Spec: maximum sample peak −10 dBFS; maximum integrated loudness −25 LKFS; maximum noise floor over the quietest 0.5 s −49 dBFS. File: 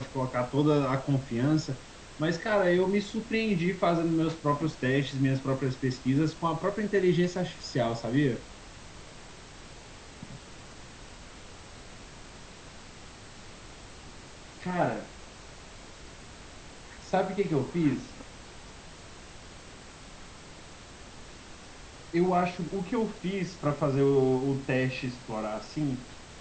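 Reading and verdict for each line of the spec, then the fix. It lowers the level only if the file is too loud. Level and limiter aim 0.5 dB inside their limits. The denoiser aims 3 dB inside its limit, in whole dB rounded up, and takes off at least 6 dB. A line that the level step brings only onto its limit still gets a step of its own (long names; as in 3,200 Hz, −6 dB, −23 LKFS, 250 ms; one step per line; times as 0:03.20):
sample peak −12.0 dBFS: in spec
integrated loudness −29.0 LKFS: in spec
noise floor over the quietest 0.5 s −47 dBFS: out of spec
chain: broadband denoise 6 dB, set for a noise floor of −47 dBFS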